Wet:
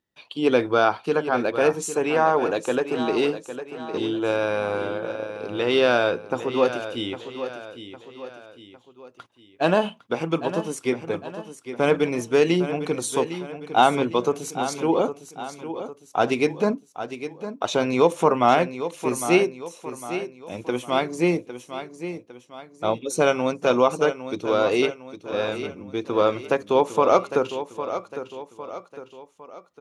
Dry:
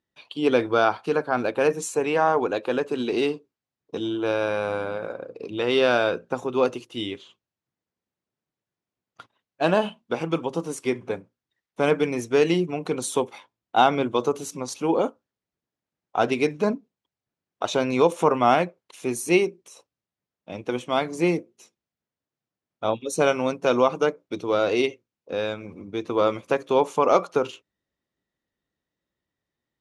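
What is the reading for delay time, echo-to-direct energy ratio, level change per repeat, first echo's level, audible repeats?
806 ms, -10.0 dB, -7.0 dB, -11.0 dB, 3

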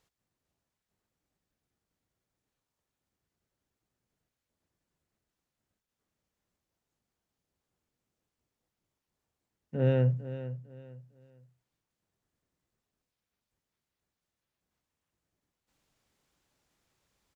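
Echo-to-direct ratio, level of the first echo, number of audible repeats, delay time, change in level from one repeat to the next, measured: -12.5 dB, -13.0 dB, 3, 452 ms, -11.0 dB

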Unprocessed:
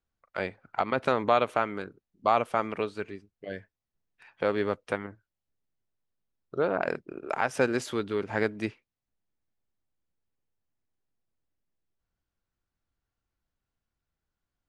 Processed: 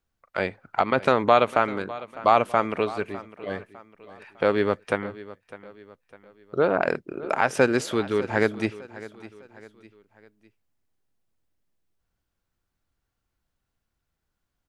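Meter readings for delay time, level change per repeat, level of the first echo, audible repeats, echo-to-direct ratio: 604 ms, -7.5 dB, -17.5 dB, 3, -16.5 dB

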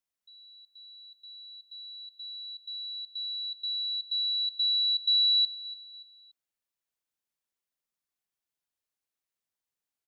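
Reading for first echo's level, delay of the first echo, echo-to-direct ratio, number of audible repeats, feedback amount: -18.0 dB, 288 ms, -17.0 dB, 3, 42%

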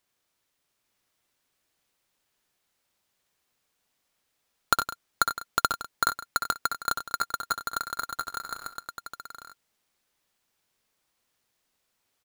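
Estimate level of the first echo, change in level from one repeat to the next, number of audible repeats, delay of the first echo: -8.0 dB, no regular repeats, 5, 61 ms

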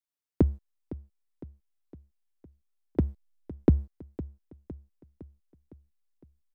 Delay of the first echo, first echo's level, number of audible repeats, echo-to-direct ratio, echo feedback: 509 ms, -16.5 dB, 4, -15.0 dB, 54%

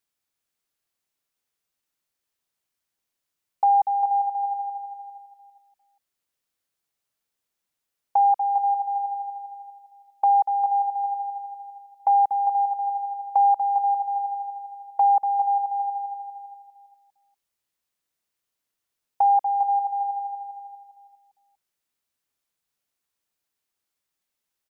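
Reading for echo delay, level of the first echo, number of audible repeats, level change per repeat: 401 ms, -9.5 dB, 3, -10.0 dB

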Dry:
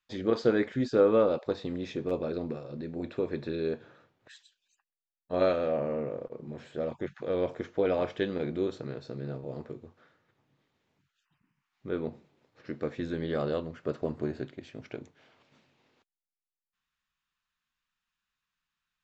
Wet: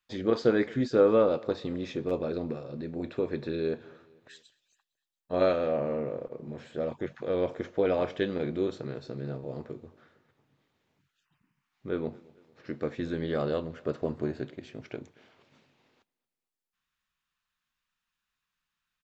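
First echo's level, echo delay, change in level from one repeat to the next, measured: -24.0 dB, 227 ms, -6.5 dB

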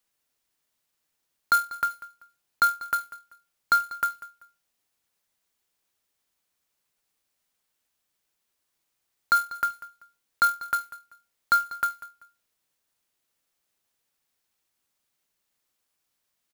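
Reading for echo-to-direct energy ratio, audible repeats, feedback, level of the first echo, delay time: -17.0 dB, 2, 27%, -17.5 dB, 193 ms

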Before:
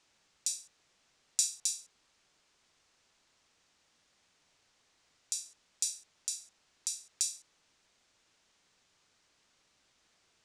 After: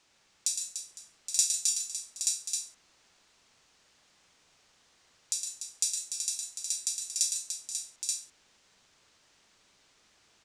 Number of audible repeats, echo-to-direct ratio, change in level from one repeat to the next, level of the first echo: 6, 0.0 dB, no regular repeats, -6.0 dB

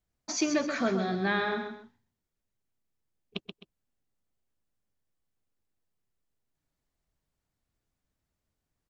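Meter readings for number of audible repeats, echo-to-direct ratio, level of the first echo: 2, -6.5 dB, -7.0 dB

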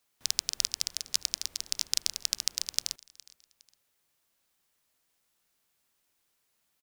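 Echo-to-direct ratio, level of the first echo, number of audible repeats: -22.5 dB, -23.0 dB, 2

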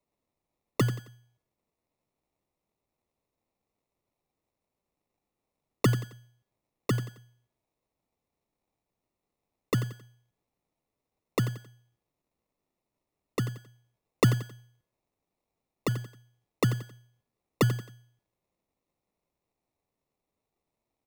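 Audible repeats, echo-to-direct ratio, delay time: 3, -13.0 dB, 89 ms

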